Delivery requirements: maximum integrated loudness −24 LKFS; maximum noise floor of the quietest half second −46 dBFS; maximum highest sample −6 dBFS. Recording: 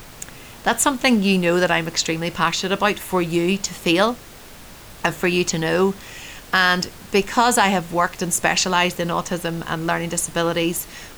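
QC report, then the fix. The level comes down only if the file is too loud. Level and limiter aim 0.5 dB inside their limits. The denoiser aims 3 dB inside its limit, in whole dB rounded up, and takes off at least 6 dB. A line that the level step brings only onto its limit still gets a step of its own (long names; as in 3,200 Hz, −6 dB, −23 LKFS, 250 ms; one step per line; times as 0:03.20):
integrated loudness −20.0 LKFS: out of spec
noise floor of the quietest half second −41 dBFS: out of spec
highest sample −4.5 dBFS: out of spec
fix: broadband denoise 6 dB, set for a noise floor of −41 dBFS
level −4.5 dB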